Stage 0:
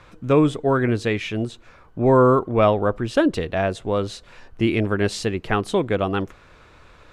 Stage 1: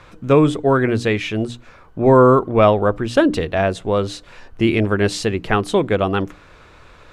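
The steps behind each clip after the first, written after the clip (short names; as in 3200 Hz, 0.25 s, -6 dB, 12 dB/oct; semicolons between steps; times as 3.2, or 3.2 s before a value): notches 60/120/180/240/300 Hz; gain +4 dB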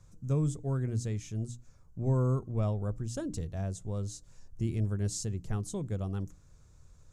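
EQ curve 140 Hz 0 dB, 300 Hz -14 dB, 2600 Hz -24 dB, 4000 Hz -16 dB, 6700 Hz +4 dB, 9900 Hz -2 dB; gain -7.5 dB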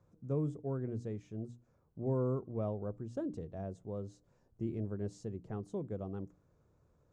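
band-pass 440 Hz, Q 0.8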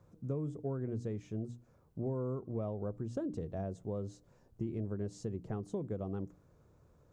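compressor 6:1, threshold -39 dBFS, peak gain reduction 10 dB; gain +5.5 dB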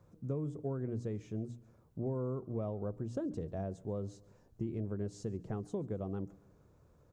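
feedback echo 0.139 s, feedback 51%, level -23.5 dB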